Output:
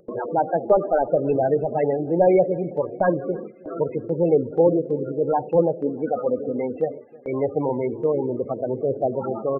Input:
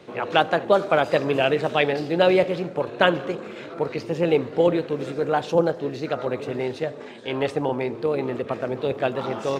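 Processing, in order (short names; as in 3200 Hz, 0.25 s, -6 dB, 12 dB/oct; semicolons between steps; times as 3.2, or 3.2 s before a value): CVSD 16 kbps; loudest bins only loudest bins 16; 5.8–6.94 comb 4 ms, depth 58%; upward compressor, threshold -28 dBFS; gate with hold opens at -26 dBFS; on a send: feedback echo 0.318 s, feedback 48%, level -23.5 dB; on the sum: gain +3 dB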